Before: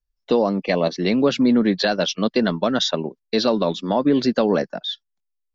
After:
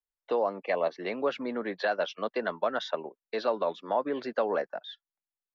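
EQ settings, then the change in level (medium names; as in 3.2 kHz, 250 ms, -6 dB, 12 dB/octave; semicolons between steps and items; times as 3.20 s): tone controls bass -2 dB, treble -3 dB; three-band isolator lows -19 dB, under 450 Hz, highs -16 dB, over 2.4 kHz; -4.5 dB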